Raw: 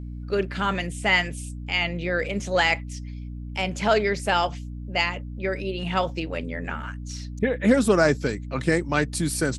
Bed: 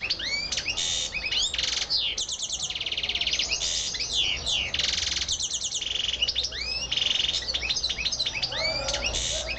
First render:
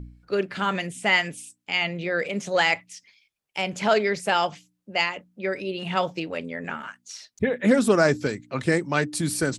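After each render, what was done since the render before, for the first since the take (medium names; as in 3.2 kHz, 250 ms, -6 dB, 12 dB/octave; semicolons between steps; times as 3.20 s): de-hum 60 Hz, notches 5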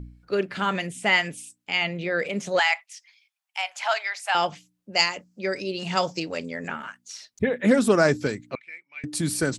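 2.59–4.35 s: elliptic high-pass 730 Hz, stop band 60 dB; 4.93–6.68 s: high-order bell 5.9 kHz +13 dB 1 oct; 8.55–9.04 s: band-pass filter 2.3 kHz, Q 18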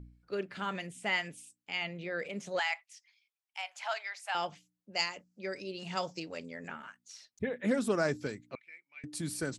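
trim -11 dB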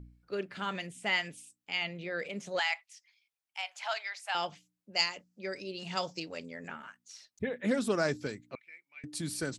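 dynamic bell 4 kHz, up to +5 dB, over -49 dBFS, Q 1.1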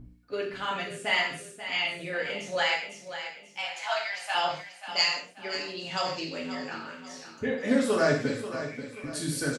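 on a send: feedback delay 536 ms, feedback 40%, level -11 dB; on the sum: gated-style reverb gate 180 ms falling, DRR -4 dB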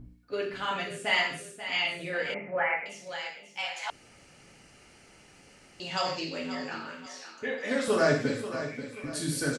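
2.34–2.86 s: elliptic low-pass 2.3 kHz; 3.90–5.80 s: room tone; 7.06–7.88 s: frequency weighting A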